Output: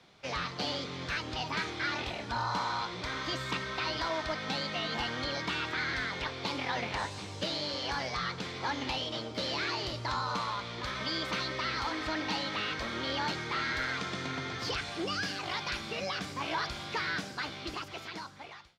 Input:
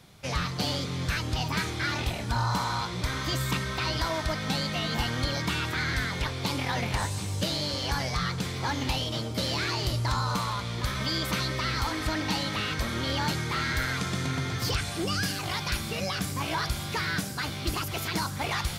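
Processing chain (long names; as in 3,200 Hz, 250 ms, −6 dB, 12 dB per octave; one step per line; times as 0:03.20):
fade-out on the ending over 1.48 s
three-way crossover with the lows and the highs turned down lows −12 dB, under 240 Hz, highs −23 dB, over 5,900 Hz
level −2.5 dB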